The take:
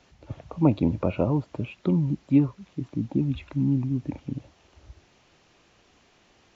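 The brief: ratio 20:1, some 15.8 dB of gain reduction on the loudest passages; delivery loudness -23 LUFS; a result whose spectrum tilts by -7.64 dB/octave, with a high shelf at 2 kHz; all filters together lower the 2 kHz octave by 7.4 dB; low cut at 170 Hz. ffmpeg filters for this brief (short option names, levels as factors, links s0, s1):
-af "highpass=170,highshelf=f=2000:g=-6,equalizer=f=2000:t=o:g=-5.5,acompressor=threshold=0.0316:ratio=20,volume=5.31"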